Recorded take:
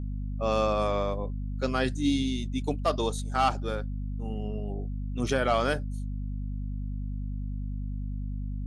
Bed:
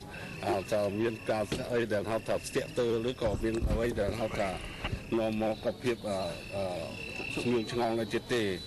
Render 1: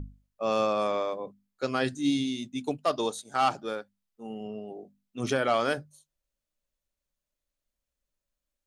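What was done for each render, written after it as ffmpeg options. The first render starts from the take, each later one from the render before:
-af "bandreject=f=50:t=h:w=6,bandreject=f=100:t=h:w=6,bandreject=f=150:t=h:w=6,bandreject=f=200:t=h:w=6,bandreject=f=250:t=h:w=6"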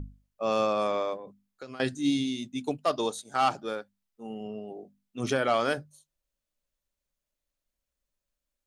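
-filter_complex "[0:a]asettb=1/sr,asplit=3[s0][s1][s2];[s0]atrim=end=1.164[s3];[s1]atrim=start=1.16:end=1.8,asetpts=PTS-STARTPTS,afade=t=in:d=0.004:c=qsin,afade=t=out:st=0.636:d=0.004:c=qsin,acompressor=threshold=0.0141:ratio=16:attack=3.2:release=140:knee=1:detection=peak[s4];[s2]atrim=start=1.796[s5];[s3][s4]acrossfade=d=0.004:c1=hsin:c2=qsin[s6];[s6][s5]acrossfade=d=0.004:c1=qsin:c2=hsin"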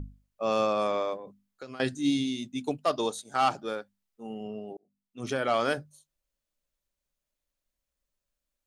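-filter_complex "[0:a]asplit=2[s0][s1];[s0]atrim=end=4.77,asetpts=PTS-STARTPTS,afade=t=out:st=4.766:d=0.004:c=hsin[s2];[s1]atrim=start=4.77,asetpts=PTS-STARTPTS,afade=t=in:d=0.85[s3];[s2][s3]concat=n=2:v=0:a=1"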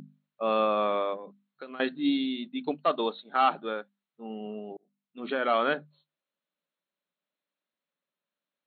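-af "afftfilt=real='re*between(b*sr/4096,140,4300)':imag='im*between(b*sr/4096,140,4300)':win_size=4096:overlap=0.75,equalizer=f=1300:t=o:w=0.88:g=3"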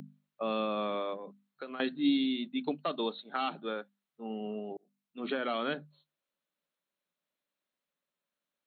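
-filter_complex "[0:a]acrossover=split=320|3000[s0][s1][s2];[s1]acompressor=threshold=0.02:ratio=4[s3];[s0][s3][s2]amix=inputs=3:normalize=0"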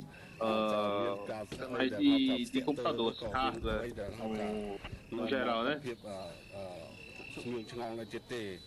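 -filter_complex "[1:a]volume=0.316[s0];[0:a][s0]amix=inputs=2:normalize=0"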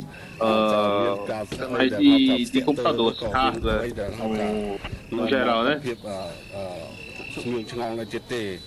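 -af "volume=3.76"

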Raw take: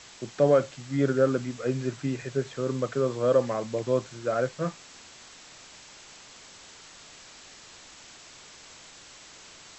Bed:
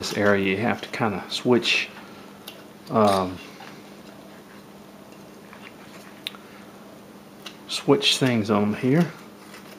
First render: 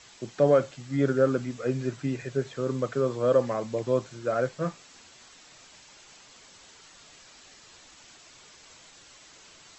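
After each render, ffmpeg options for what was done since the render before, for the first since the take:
-af "afftdn=nr=6:nf=-50"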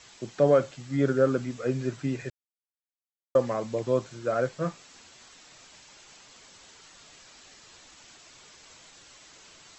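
-filter_complex "[0:a]asplit=3[s0][s1][s2];[s0]atrim=end=2.3,asetpts=PTS-STARTPTS,afade=t=out:st=2.296:d=0.004:c=hsin[s3];[s1]atrim=start=2.3:end=3.35,asetpts=PTS-STARTPTS,volume=0[s4];[s2]atrim=start=3.35,asetpts=PTS-STARTPTS,afade=t=in:d=0.004:c=hsin[s5];[s3][s4][s5]concat=n=3:v=0:a=1"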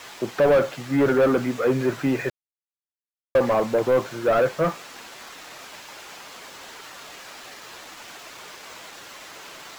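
-filter_complex "[0:a]asplit=2[s0][s1];[s1]highpass=f=720:p=1,volume=17.8,asoftclip=type=tanh:threshold=0.335[s2];[s0][s2]amix=inputs=2:normalize=0,lowpass=f=1200:p=1,volume=0.501,acrusher=bits=6:mix=0:aa=0.5"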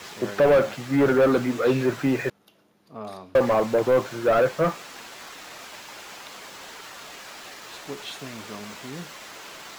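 -filter_complex "[1:a]volume=0.119[s0];[0:a][s0]amix=inputs=2:normalize=0"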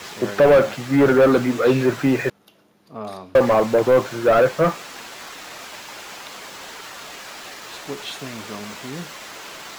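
-af "volume=1.68"

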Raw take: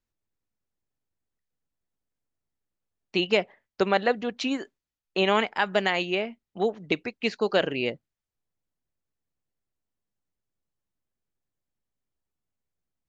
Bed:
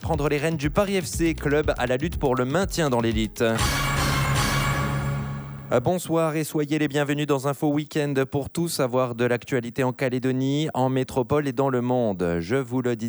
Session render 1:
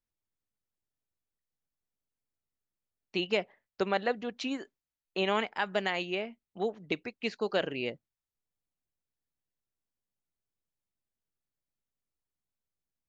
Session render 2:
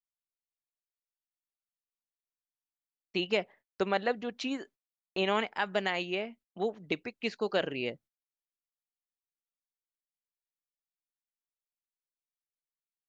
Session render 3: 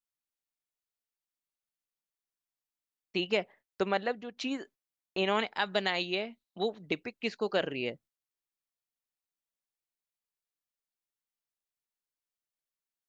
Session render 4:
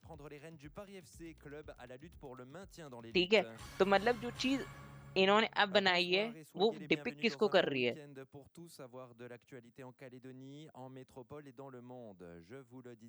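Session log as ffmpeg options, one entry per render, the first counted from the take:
-af "volume=0.473"
-af "agate=range=0.0562:threshold=0.00178:ratio=16:detection=peak"
-filter_complex "[0:a]asettb=1/sr,asplit=3[s0][s1][s2];[s0]atrim=end=5.394[s3];[s1]atrim=start=5.39:end=6.82,asetpts=PTS-STARTPTS,afade=t=in:d=0.004:c=qsin,afade=t=out:st=1.426:d=0.004:c=qsin,equalizer=f=3900:w=4.2:g=12.5[s4];[s2]atrim=start=6.816[s5];[s3][s4]acrossfade=d=0.004:c1=hsin:c2=qsin[s6];[s6][s5]acrossfade=d=0.004:c1=qsin:c2=hsin,asplit=2[s7][s8];[s7]atrim=end=4.37,asetpts=PTS-STARTPTS,afade=t=out:st=3.92:d=0.45:silence=0.375837[s9];[s8]atrim=start=4.37,asetpts=PTS-STARTPTS,afade=t=in:d=0.004:c=hsin:silence=0.375837[s10];[s9][s10]concat=n=2:v=0:a=1"
-filter_complex "[1:a]volume=0.0376[s0];[0:a][s0]amix=inputs=2:normalize=0"

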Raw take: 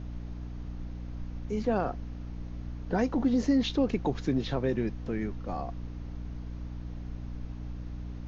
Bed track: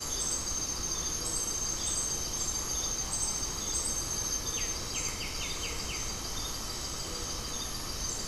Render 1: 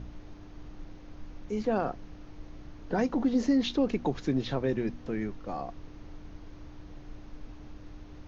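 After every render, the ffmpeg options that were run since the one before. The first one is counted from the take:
-af "bandreject=f=60:t=h:w=4,bandreject=f=120:t=h:w=4,bandreject=f=180:t=h:w=4,bandreject=f=240:t=h:w=4"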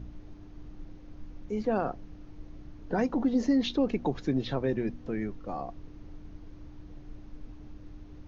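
-af "afftdn=nr=6:nf=-48"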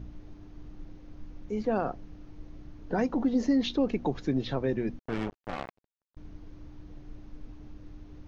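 -filter_complex "[0:a]asettb=1/sr,asplit=3[s0][s1][s2];[s0]atrim=end=4.994[s3];[s1]atrim=start=4.99:end=6.17,asetpts=PTS-STARTPTS,afade=t=in:d=0.004:c=qsin,afade=t=out:st=1.176:d=0.004:c=qsin,acrusher=bits=4:mix=0:aa=0.5[s4];[s2]atrim=start=6.166[s5];[s3][s4]acrossfade=d=0.004:c1=hsin:c2=qsin[s6];[s6][s5]acrossfade=d=0.004:c1=qsin:c2=hsin"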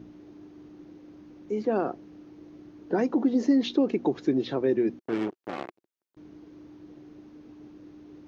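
-af "highpass=170,equalizer=f=350:w=2.5:g=9.5"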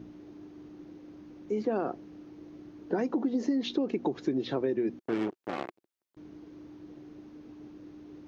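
-af "acompressor=threshold=0.0562:ratio=6"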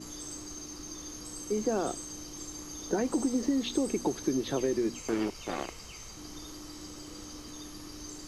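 -filter_complex "[1:a]volume=0.299[s0];[0:a][s0]amix=inputs=2:normalize=0"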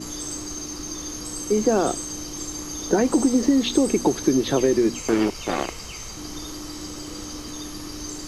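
-af "volume=3.16"

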